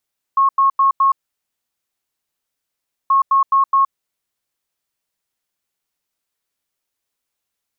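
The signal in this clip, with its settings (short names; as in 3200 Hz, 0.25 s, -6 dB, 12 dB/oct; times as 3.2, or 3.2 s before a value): beep pattern sine 1090 Hz, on 0.12 s, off 0.09 s, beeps 4, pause 1.98 s, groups 2, -10 dBFS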